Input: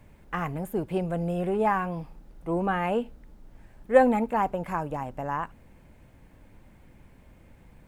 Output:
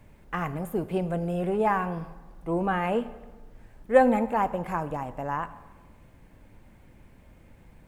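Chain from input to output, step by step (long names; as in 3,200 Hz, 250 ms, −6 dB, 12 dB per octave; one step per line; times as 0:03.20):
dense smooth reverb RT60 1.3 s, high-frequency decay 0.8×, DRR 13.5 dB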